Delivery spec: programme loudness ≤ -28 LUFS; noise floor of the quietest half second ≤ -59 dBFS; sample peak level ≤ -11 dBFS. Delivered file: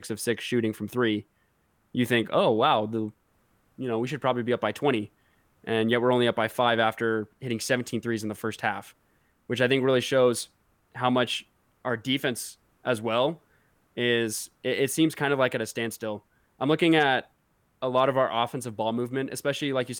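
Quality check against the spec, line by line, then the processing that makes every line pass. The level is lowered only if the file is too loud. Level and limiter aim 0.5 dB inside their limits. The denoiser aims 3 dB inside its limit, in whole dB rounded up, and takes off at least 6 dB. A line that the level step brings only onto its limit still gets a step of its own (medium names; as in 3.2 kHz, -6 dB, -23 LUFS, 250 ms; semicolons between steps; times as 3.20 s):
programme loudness -26.5 LUFS: fail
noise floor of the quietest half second -69 dBFS: pass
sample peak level -9.0 dBFS: fail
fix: trim -2 dB; peak limiter -11.5 dBFS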